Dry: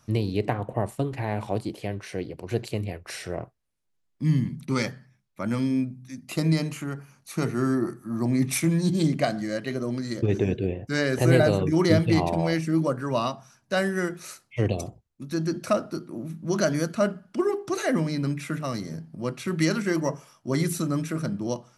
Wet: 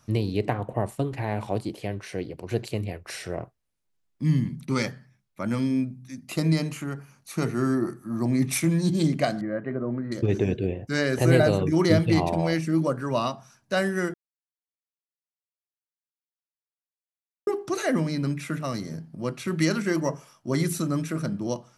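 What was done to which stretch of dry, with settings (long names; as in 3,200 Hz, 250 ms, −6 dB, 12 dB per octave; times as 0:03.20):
0:09.41–0:10.12: low-pass filter 1,700 Hz 24 dB per octave
0:14.14–0:17.47: silence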